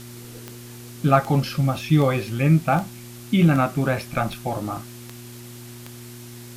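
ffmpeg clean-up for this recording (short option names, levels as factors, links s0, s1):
-af "adeclick=t=4,bandreject=f=119.8:t=h:w=4,bandreject=f=239.6:t=h:w=4,bandreject=f=359.4:t=h:w=4,afwtdn=0.0063"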